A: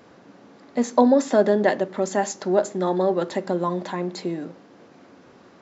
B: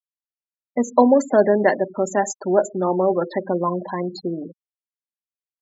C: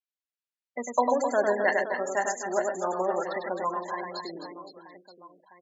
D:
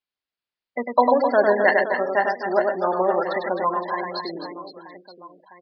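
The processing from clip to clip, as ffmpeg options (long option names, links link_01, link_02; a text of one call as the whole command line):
ffmpeg -i in.wav -af "equalizer=frequency=230:width_type=o:width=1.9:gain=-2.5,afftfilt=real='re*gte(hypot(re,im),0.0447)':imag='im*gte(hypot(re,im),0.0447)':win_size=1024:overlap=0.75,volume=3.5dB" out.wav
ffmpeg -i in.wav -filter_complex "[0:a]bandpass=frequency=2500:width_type=q:width=0.63:csg=0,asplit=2[link_01][link_02];[link_02]aecho=0:1:100|260|516|925.6|1581:0.631|0.398|0.251|0.158|0.1[link_03];[link_01][link_03]amix=inputs=2:normalize=0,volume=-1.5dB" out.wav
ffmpeg -i in.wav -af "aresample=11025,aresample=44100,volume=7dB" out.wav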